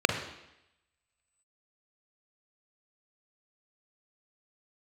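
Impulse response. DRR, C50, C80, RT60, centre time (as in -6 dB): 5.0 dB, 7.5 dB, 9.5 dB, 0.85 s, 24 ms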